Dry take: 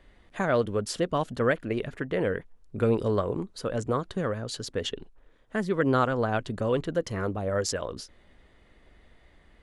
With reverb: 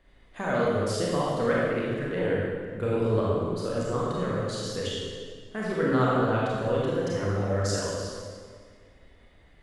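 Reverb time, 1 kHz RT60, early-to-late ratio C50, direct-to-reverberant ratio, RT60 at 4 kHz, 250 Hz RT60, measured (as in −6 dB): 1.8 s, 1.8 s, −3.0 dB, −6.0 dB, 1.5 s, 2.1 s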